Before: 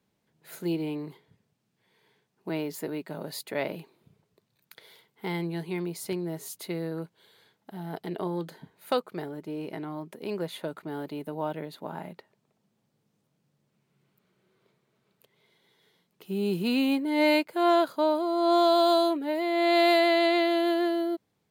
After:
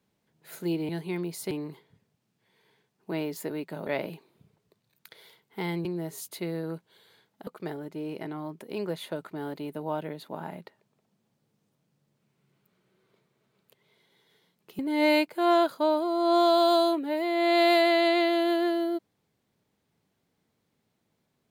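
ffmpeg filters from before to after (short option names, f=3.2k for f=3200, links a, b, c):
-filter_complex "[0:a]asplit=7[a][b][c][d][e][f][g];[a]atrim=end=0.892[h];[b]atrim=start=5.508:end=6.132[i];[c]atrim=start=0.888:end=3.252[j];[d]atrim=start=3.528:end=5.512[k];[e]atrim=start=6.128:end=7.752[l];[f]atrim=start=8.988:end=16.312[m];[g]atrim=start=16.968[n];[h][i]acrossfade=d=0.004:c1=hsin:c2=hsin[o];[o][j]acrossfade=d=0.004:c1=hsin:c2=hsin[p];[p][k]acrossfade=d=0.004:c1=hsin:c2=hsin[q];[q][l]acrossfade=d=0.004:c1=hsin:c2=hsin[r];[r][m]acrossfade=d=0.004:c1=hsin:c2=hsin[s];[s][n]acrossfade=d=0.004:c1=hsin:c2=hsin"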